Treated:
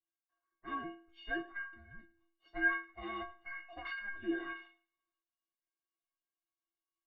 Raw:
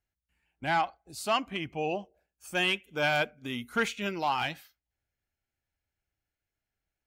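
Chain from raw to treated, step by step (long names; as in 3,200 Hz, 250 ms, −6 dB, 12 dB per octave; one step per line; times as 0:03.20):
transient designer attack +6 dB, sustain +10 dB
formants moved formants −5 semitones
in parallel at −4 dB: soft clipping −25 dBFS, distortion −10 dB
on the sum: single-sideband voice off tune −390 Hz 430–3,500 Hz
stiff-string resonator 330 Hz, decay 0.5 s, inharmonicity 0.03
on a send: feedback echo with a high-pass in the loop 107 ms, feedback 26%, high-pass 390 Hz, level −19 dB
on the sum: level +3.5 dB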